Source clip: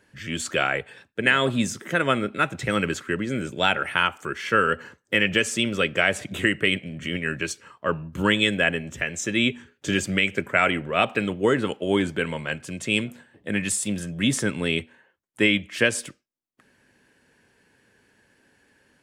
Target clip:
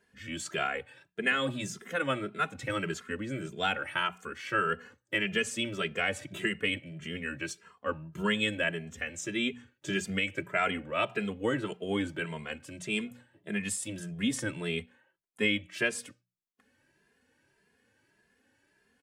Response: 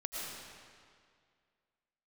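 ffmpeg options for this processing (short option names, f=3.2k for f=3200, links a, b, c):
-filter_complex "[0:a]bandreject=f=60:t=h:w=6,bandreject=f=120:t=h:w=6,bandreject=f=180:t=h:w=6,asplit=2[a][b];[b]adelay=2.5,afreqshift=1.7[c];[a][c]amix=inputs=2:normalize=1,volume=-5.5dB"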